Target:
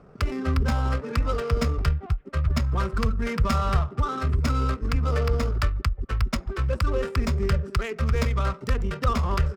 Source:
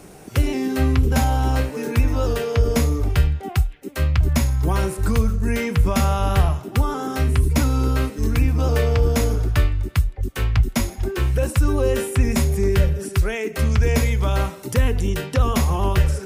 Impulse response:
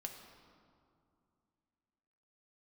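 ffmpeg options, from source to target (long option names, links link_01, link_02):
-af "equalizer=frequency=100:width_type=o:width=0.33:gain=-5,equalizer=frequency=315:width_type=o:width=0.33:gain=-10,equalizer=frequency=800:width_type=o:width=0.33:gain=-6,equalizer=frequency=1250:width_type=o:width=0.33:gain=10,equalizer=frequency=5000:width_type=o:width=0.33:gain=9,equalizer=frequency=8000:width_type=o:width=0.33:gain=6,atempo=1.7,adynamicsmooth=sensitivity=2.5:basefreq=1100,volume=-4dB"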